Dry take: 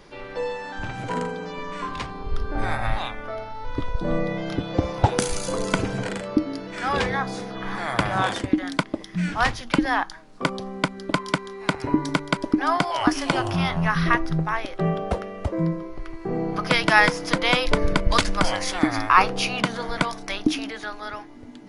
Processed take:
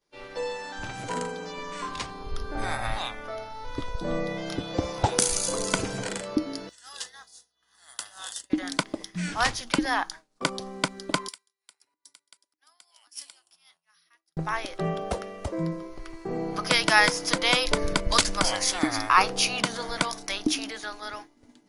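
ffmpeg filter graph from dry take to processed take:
ffmpeg -i in.wav -filter_complex "[0:a]asettb=1/sr,asplit=3[link_01][link_02][link_03];[link_01]atrim=end=6.694[link_04];[link_02]atrim=start=6.69:end=8.5,asetpts=PTS-STARTPTS,afade=type=in:duration=0.004:curve=qsin,afade=type=out:start_time=1.806:duration=0.004:curve=qsin,aderivative,aeval=exprs='val(0)+0.001*(sin(2*PI*60*n/s)+sin(2*PI*2*60*n/s)/2+sin(2*PI*3*60*n/s)/3+sin(2*PI*4*60*n/s)/4+sin(2*PI*5*60*n/s)/5)':channel_layout=same,asuperstop=centerf=2300:order=4:qfactor=4.2[link_05];[link_03]atrim=start=8.496[link_06];[link_04][link_05]acrossfade=duration=0.004:curve1=hsin:curve2=qsin[link_07];[link_07][link_06]acrossfade=duration=0.004:curve1=qsin:curve2=hsin,asettb=1/sr,asplit=3[link_08][link_09][link_10];[link_08]atrim=end=11.284[link_11];[link_09]atrim=start=11.28:end=14.37,asetpts=PTS-STARTPTS,afade=type=in:duration=0.004:curve=qsin,afade=type=out:start_time=3.086:duration=0.004:curve=qsin,bandreject=frequency=6300:width=8.3,acompressor=threshold=-26dB:ratio=6:attack=3.2:release=140:knee=1:detection=peak,aderivative[link_12];[link_10]atrim=start=14.366[link_13];[link_11][link_12]acrossfade=duration=0.004:curve1=hsin:curve2=qsin[link_14];[link_14][link_13]acrossfade=duration=0.004:curve1=qsin:curve2=hsin,agate=range=-33dB:threshold=-34dB:ratio=3:detection=peak,bass=frequency=250:gain=-4,treble=frequency=4000:gain=11,volume=-3.5dB" out.wav

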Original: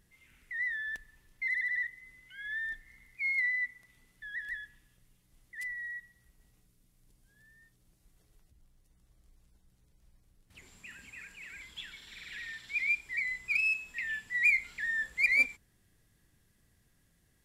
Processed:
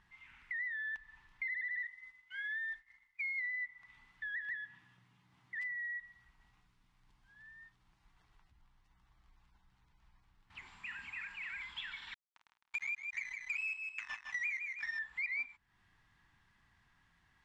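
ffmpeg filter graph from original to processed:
ffmpeg -i in.wav -filter_complex "[0:a]asettb=1/sr,asplit=3[link_01][link_02][link_03];[link_01]atrim=end=1.794[link_04];[link_02]atrim=start=1.79:end=3.48,asetpts=PTS-STARTPTS,afade=type=in:duration=0.004:curve=qsin,afade=type=out:start_time=1.686:duration=0.004:curve=qsin,bass=frequency=250:gain=-7,treble=frequency=4000:gain=7,agate=range=-33dB:threshold=-50dB:ratio=3:release=100:detection=peak[link_05];[link_03]atrim=start=3.476[link_06];[link_04][link_05]acrossfade=duration=0.004:curve1=hsin:curve2=qsin[link_07];[link_07][link_06]acrossfade=duration=0.004:curve1=qsin:curve2=hsin,asettb=1/sr,asplit=3[link_08][link_09][link_10];[link_08]atrim=end=4.484[link_11];[link_09]atrim=start=4.48:end=5.77,asetpts=PTS-STARTPTS,afade=type=in:duration=0.004:curve=qsin,afade=type=out:start_time=1.286:duration=0.004:curve=qsin,highpass=frequency=110:width=0.5412,highpass=frequency=110:width=1.3066,lowshelf=frequency=460:gain=9[link_12];[link_10]atrim=start=5.766[link_13];[link_11][link_12]acrossfade=duration=0.004:curve1=hsin:curve2=qsin[link_14];[link_14][link_13]acrossfade=duration=0.004:curve1=qsin:curve2=hsin,asettb=1/sr,asplit=3[link_15][link_16][link_17];[link_15]atrim=end=12.144[link_18];[link_16]atrim=start=12.14:end=14.99,asetpts=PTS-STARTPTS,afade=type=in:duration=0.004:curve=qsin,afade=type=out:start_time=2.846:duration=0.004:curve=qsin,acrusher=bits=4:mix=0:aa=0.5,aecho=1:1:157|314|471:0.355|0.106|0.0319,atrim=end_sample=125685[link_19];[link_17]atrim=start=14.986[link_20];[link_18][link_19]acrossfade=duration=0.004:curve1=hsin:curve2=qsin[link_21];[link_21][link_20]acrossfade=duration=0.004:curve1=qsin:curve2=hsin,lowpass=3100,lowshelf=frequency=700:width_type=q:width=3:gain=-9,acompressor=threshold=-45dB:ratio=4,volume=5dB" out.wav

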